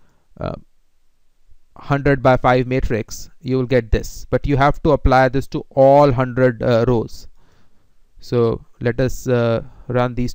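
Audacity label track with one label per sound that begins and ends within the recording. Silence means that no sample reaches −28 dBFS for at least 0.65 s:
1.760000	7.200000	sound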